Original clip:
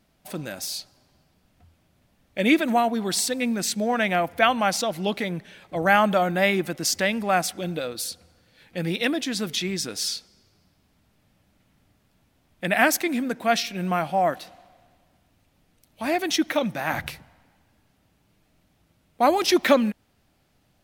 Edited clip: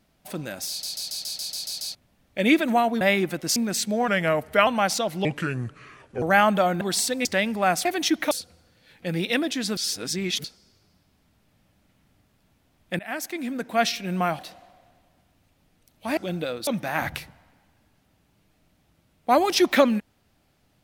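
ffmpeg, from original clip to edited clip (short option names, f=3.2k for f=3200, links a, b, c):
-filter_complex "[0:a]asplit=26[a][b][c][d][e][f][g][h][i][j][k][l][m][n][o][p][q][r][s][t][u][v][w][x][y][z];[a]atrim=end=0.832[aa];[b]atrim=start=0.688:end=0.832[ab];[c]atrim=start=0.688:end=0.832[ac];[d]atrim=start=0.688:end=0.832[ad];[e]atrim=start=0.688:end=0.832[ae];[f]atrim=start=0.688:end=0.832[af];[g]atrim=start=0.688:end=0.832[ag];[h]atrim=start=0.688:end=0.832[ah];[i]atrim=start=0.688:end=0.832[ai];[j]atrim=start=1.948:end=3.012[aj];[k]atrim=start=6.368:end=6.922[ak];[l]atrim=start=3.448:end=3.974[al];[m]atrim=start=3.97:end=4.5,asetpts=PTS-STARTPTS,asetrate=39690,aresample=44100[am];[n]atrim=start=4.496:end=5.084[an];[o]atrim=start=5.08:end=5.78,asetpts=PTS-STARTPTS,asetrate=31752,aresample=44100[ao];[p]atrim=start=5.776:end=6.372[ap];[q]atrim=start=3.008:end=3.452[aq];[r]atrim=start=6.918:end=7.522[ar];[s]atrim=start=16.128:end=16.592[as];[t]atrim=start=8.018:end=9.482[at];[u]atrim=start=9.478:end=10.152,asetpts=PTS-STARTPTS,areverse[au];[v]atrim=start=10.148:end=12.7,asetpts=PTS-STARTPTS,afade=t=out:st=2.548:d=0.004:c=hsin:silence=0.0749894[av];[w]atrim=start=12.7:end=14.102,asetpts=PTS-STARTPTS,afade=t=in:d=0.85:silence=0.0749894[aw];[x]atrim=start=14.348:end=16.132[ax];[y]atrim=start=7.518:end=8.022[ay];[z]atrim=start=16.588[az];[aa][ab]acrossfade=d=0.004:c1=hsin:c2=hsin[ba];[ba][ac]acrossfade=d=0.004:c1=hsin:c2=hsin[bb];[bb][ad]acrossfade=d=0.004:c1=hsin:c2=hsin[bc];[bc][ae]acrossfade=d=0.004:c1=hsin:c2=hsin[bd];[bd][af]acrossfade=d=0.004:c1=hsin:c2=hsin[be];[be][ag]acrossfade=d=0.004:c1=hsin:c2=hsin[bf];[bf][ah]acrossfade=d=0.004:c1=hsin:c2=hsin[bg];[bg][ai]acrossfade=d=0.004:c1=hsin:c2=hsin[bh];[bh][aj]acrossfade=d=0.004:c1=hsin:c2=hsin[bi];[bi][ak]acrossfade=d=0.004:c1=hsin:c2=hsin[bj];[bj][al]acrossfade=d=0.004:c1=hsin:c2=hsin[bk];[bk][am]acrossfade=d=0.004:c1=hsin:c2=hsin[bl];[bl][an]acrossfade=d=0.004:c1=hsin:c2=hsin[bm];[bm][ao]acrossfade=d=0.004:c1=hsin:c2=hsin[bn];[bn][ap]acrossfade=d=0.004:c1=hsin:c2=hsin[bo];[bo][aq]acrossfade=d=0.004:c1=hsin:c2=hsin[bp];[bp][ar]acrossfade=d=0.004:c1=hsin:c2=hsin[bq];[bq][as]acrossfade=d=0.004:c1=hsin:c2=hsin[br];[br][at]acrossfade=d=0.004:c1=hsin:c2=hsin[bs];[bs][au]acrossfade=d=0.004:c1=hsin:c2=hsin[bt];[av][aw]concat=n=2:v=0:a=1[bu];[bt][bu]acrossfade=d=0.004:c1=hsin:c2=hsin[bv];[bv][ax]acrossfade=d=0.004:c1=hsin:c2=hsin[bw];[bw][ay]acrossfade=d=0.004:c1=hsin:c2=hsin[bx];[bx][az]acrossfade=d=0.004:c1=hsin:c2=hsin"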